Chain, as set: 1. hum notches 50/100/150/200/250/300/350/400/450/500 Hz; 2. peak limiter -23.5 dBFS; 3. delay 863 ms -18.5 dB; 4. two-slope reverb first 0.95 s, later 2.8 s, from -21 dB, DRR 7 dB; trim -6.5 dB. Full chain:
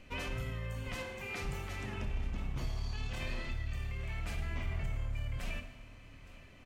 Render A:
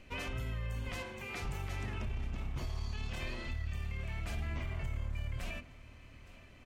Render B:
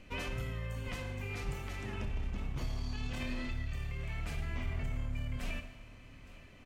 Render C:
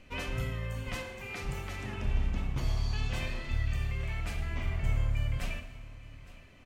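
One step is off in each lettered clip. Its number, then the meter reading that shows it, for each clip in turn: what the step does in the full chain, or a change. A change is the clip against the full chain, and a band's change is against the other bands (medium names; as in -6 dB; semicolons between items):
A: 4, momentary loudness spread change +2 LU; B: 1, 250 Hz band +3.5 dB; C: 2, mean gain reduction 3.0 dB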